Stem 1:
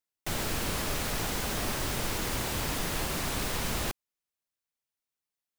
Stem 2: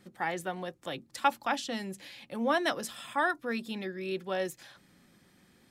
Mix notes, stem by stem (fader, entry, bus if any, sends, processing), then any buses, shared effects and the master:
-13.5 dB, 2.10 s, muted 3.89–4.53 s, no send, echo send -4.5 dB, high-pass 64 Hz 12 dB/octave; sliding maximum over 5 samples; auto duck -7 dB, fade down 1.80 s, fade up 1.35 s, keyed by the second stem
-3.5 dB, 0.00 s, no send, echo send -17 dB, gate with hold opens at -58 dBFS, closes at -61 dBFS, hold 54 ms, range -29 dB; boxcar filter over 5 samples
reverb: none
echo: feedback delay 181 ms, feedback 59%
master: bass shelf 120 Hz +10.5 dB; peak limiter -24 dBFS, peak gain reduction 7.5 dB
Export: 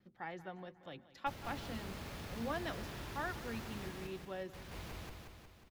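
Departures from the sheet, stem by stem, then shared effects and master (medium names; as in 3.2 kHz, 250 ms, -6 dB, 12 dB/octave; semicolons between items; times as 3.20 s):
stem 1: entry 2.10 s -> 1.00 s; stem 2 -3.5 dB -> -12.5 dB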